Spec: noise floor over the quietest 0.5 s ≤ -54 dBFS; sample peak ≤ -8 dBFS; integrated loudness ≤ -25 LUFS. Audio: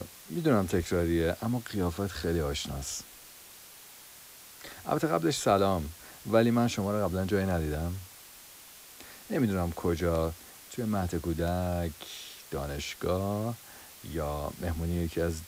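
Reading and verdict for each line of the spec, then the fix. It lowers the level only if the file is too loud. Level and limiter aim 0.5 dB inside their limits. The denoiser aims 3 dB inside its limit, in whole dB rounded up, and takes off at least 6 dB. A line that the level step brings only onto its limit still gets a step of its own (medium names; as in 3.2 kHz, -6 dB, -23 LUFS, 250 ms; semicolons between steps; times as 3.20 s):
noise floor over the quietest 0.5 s -51 dBFS: fail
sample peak -9.5 dBFS: pass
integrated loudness -30.5 LUFS: pass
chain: noise reduction 6 dB, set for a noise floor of -51 dBFS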